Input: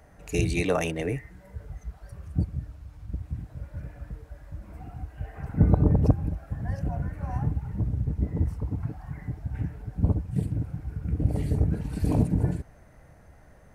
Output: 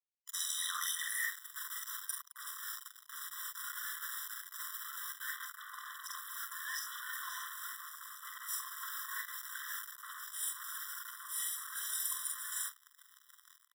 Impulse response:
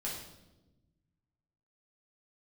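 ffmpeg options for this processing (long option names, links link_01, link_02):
-filter_complex "[0:a]agate=range=-7dB:threshold=-38dB:ratio=16:detection=peak,aecho=1:1:45|69:0.631|0.376,acrossover=split=630[link_01][link_02];[link_02]dynaudnorm=framelen=110:gausssize=5:maxgain=11dB[link_03];[link_01][link_03]amix=inputs=2:normalize=0,aemphasis=mode=production:type=75fm,bandreject=frequency=50:width_type=h:width=6,bandreject=frequency=100:width_type=h:width=6,bandreject=frequency=150:width_type=h:width=6,areverse,acompressor=threshold=-34dB:ratio=12,areverse,adynamicequalizer=threshold=0.00126:dfrequency=1400:dqfactor=0.87:tfrequency=1400:tqfactor=0.87:attack=5:release=100:ratio=0.375:range=2.5:mode=cutabove:tftype=bell,acrusher=bits=6:mix=0:aa=0.5,afftfilt=real='re*eq(mod(floor(b*sr/1024/1000),2),1)':imag='im*eq(mod(floor(b*sr/1024/1000),2),1)':win_size=1024:overlap=0.75,volume=7.5dB"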